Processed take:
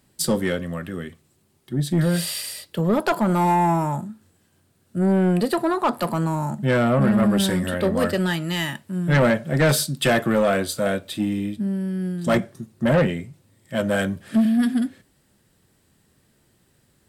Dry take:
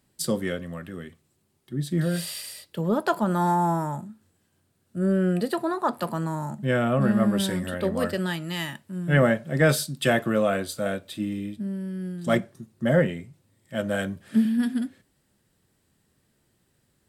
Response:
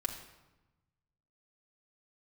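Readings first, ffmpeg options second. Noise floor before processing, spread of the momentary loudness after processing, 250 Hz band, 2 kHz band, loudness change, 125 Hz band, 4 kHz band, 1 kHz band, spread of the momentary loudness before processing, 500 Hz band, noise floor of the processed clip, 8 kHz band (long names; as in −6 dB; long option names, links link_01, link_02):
−70 dBFS, 11 LU, +4.0 dB, +3.0 dB, +4.0 dB, +4.0 dB, +5.0 dB, +4.0 dB, 13 LU, +3.5 dB, −63 dBFS, +5.5 dB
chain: -af "asoftclip=type=tanh:threshold=-19dB,volume=6.5dB"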